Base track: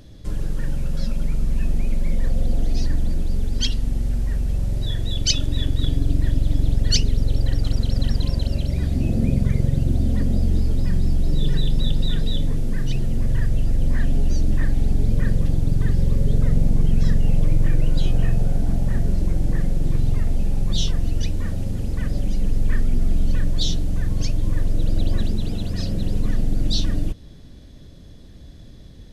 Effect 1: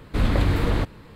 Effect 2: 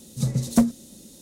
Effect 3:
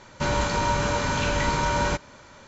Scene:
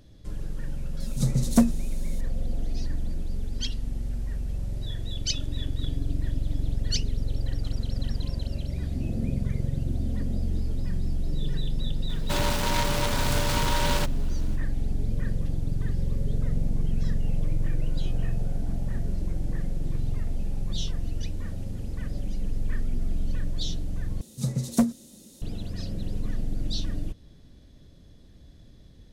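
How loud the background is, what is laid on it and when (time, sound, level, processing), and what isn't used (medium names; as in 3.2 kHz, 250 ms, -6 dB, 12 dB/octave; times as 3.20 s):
base track -8.5 dB
1.00 s: add 2 -1 dB
12.09 s: add 3 -3 dB + delay time shaken by noise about 2.5 kHz, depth 0.12 ms
24.21 s: replace with 2 -3.5 dB
not used: 1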